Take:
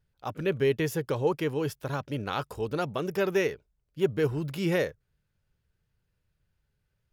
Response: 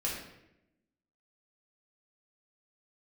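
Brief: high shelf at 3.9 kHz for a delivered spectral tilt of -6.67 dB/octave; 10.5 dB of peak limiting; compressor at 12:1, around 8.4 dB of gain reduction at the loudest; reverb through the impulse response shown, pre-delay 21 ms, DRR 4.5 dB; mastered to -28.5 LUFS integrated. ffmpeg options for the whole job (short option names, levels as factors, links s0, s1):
-filter_complex "[0:a]highshelf=f=3900:g=-7.5,acompressor=threshold=0.0398:ratio=12,alimiter=level_in=2.11:limit=0.0631:level=0:latency=1,volume=0.473,asplit=2[s0][s1];[1:a]atrim=start_sample=2205,adelay=21[s2];[s1][s2]afir=irnorm=-1:irlink=0,volume=0.355[s3];[s0][s3]amix=inputs=2:normalize=0,volume=2.99"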